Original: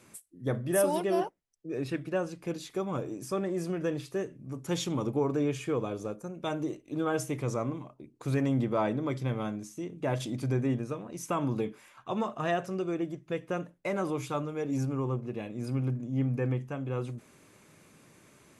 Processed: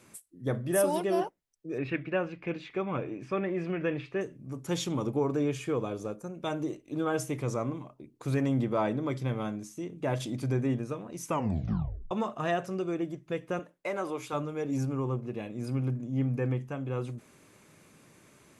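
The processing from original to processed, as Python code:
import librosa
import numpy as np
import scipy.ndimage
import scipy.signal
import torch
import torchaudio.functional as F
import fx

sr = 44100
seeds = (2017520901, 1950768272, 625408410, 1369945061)

y = fx.lowpass_res(x, sr, hz=2400.0, q=2.9, at=(1.78, 4.21))
y = fx.bass_treble(y, sr, bass_db=-13, treble_db=-2, at=(13.59, 14.33))
y = fx.edit(y, sr, fx.tape_stop(start_s=11.28, length_s=0.83), tone=tone)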